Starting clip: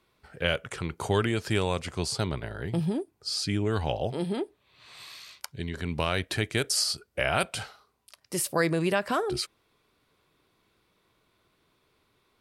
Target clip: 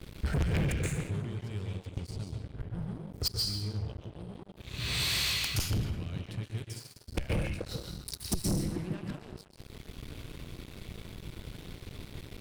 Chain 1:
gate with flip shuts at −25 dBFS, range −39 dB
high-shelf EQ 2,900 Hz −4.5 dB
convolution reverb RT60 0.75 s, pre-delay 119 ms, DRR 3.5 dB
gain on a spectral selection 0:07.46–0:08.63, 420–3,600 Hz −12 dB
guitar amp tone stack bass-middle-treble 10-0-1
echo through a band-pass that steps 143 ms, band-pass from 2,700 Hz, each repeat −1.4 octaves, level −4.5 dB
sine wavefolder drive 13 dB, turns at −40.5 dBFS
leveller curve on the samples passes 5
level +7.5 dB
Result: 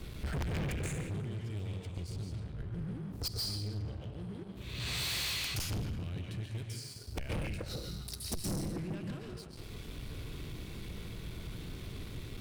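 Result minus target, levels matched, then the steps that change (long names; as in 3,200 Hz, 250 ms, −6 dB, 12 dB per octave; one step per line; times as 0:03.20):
sine wavefolder: distortion +14 dB
change: sine wavefolder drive 13 dB, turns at −32 dBFS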